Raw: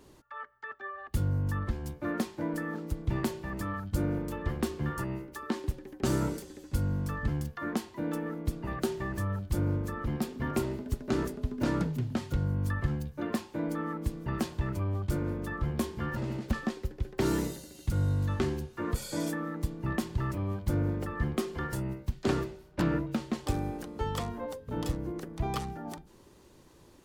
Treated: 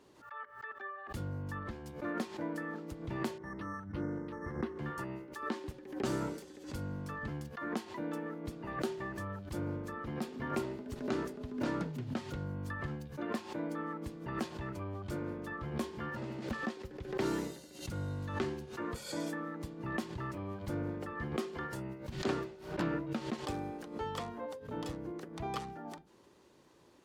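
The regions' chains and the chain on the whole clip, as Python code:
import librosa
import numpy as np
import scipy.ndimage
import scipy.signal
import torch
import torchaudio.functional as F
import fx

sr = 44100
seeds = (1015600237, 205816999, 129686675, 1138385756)

y = fx.chain(x, sr, fx.brickwall_bandstop(low_hz=2200.0, high_hz=9800.0),
    fx.peak_eq(hz=670.0, db=-6.0, octaves=0.59),
    fx.resample_linear(factor=6), at=(3.38, 4.79))
y = fx.highpass(y, sr, hz=260.0, slope=6)
y = fx.high_shelf(y, sr, hz=8200.0, db=-11.5)
y = fx.pre_swell(y, sr, db_per_s=100.0)
y = F.gain(torch.from_numpy(y), -3.0).numpy()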